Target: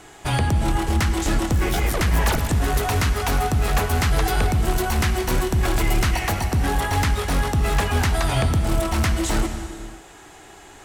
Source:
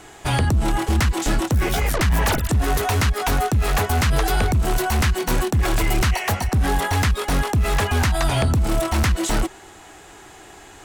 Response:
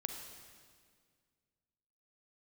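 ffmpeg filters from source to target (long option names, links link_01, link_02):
-filter_complex "[0:a]asplit=2[link_01][link_02];[1:a]atrim=start_sample=2205,afade=type=out:start_time=0.44:duration=0.01,atrim=end_sample=19845,asetrate=29106,aresample=44100[link_03];[link_02][link_03]afir=irnorm=-1:irlink=0,volume=2dB[link_04];[link_01][link_04]amix=inputs=2:normalize=0,volume=-9dB"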